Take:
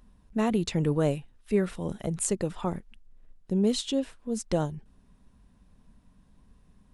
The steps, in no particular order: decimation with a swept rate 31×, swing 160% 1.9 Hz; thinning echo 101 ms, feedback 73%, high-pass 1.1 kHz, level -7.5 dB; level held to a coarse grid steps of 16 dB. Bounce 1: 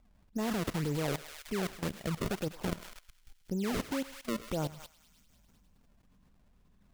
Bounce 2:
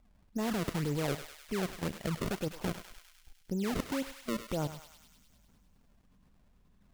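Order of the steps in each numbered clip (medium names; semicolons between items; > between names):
decimation with a swept rate > thinning echo > level held to a coarse grid; level held to a coarse grid > decimation with a swept rate > thinning echo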